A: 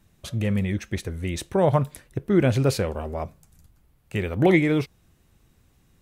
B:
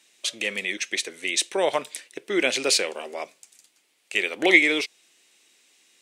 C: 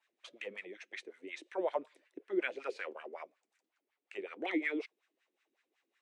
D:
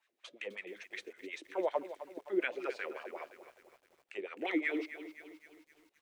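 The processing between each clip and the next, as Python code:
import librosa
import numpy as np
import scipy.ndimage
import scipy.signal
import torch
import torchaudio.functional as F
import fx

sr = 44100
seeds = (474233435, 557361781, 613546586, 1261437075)

y1 = scipy.signal.sosfilt(scipy.signal.butter(4, 320.0, 'highpass', fs=sr, output='sos'), x)
y1 = fx.band_shelf(y1, sr, hz=4300.0, db=14.5, octaves=2.6)
y1 = y1 * librosa.db_to_amplitude(-2.0)
y2 = fx.wah_lfo(y1, sr, hz=5.4, low_hz=280.0, high_hz=1700.0, q=3.3)
y2 = y2 * librosa.db_to_amplitude(-5.0)
y3 = fx.echo_crushed(y2, sr, ms=259, feedback_pct=55, bits=10, wet_db=-12.5)
y3 = y3 * librosa.db_to_amplitude(1.0)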